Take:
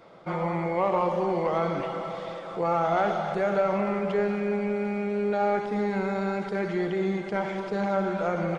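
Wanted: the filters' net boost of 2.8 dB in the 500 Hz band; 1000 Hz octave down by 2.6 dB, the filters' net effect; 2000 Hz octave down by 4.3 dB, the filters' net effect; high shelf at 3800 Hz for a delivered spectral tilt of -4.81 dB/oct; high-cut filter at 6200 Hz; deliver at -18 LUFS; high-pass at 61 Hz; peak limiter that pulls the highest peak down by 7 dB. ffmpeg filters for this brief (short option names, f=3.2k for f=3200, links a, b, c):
-af "highpass=61,lowpass=6.2k,equalizer=f=500:t=o:g=5,equalizer=f=1k:t=o:g=-5,equalizer=f=2k:t=o:g=-5,highshelf=f=3.8k:g=4,volume=9.5dB,alimiter=limit=-9.5dB:level=0:latency=1"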